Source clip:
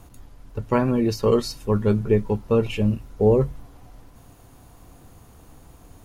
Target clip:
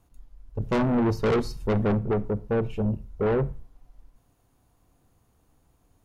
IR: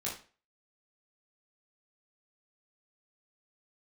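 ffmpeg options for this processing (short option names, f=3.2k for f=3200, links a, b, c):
-filter_complex "[0:a]asettb=1/sr,asplit=3[a][b][c];[a]atrim=end=0.604[d];[b]atrim=start=0.6:end=1.99,asetpts=PTS-STARTPTS,afade=t=in:d=0.004:c=qsin,afade=t=out:st=1.386:d=0.004:c=qsin,acontrast=65[e];[c]atrim=start=1.986[f];[d][e]acrossfade=d=0.004:c1=hsin:c2=qsin[g];[g][f]acrossfade=d=0.004:c1=qsin:c2=hsin,afwtdn=0.0708,asoftclip=type=tanh:threshold=-20dB,asplit=2[h][i];[1:a]atrim=start_sample=2205,adelay=32[j];[i][j]afir=irnorm=-1:irlink=0,volume=-21dB[k];[h][k]amix=inputs=2:normalize=0"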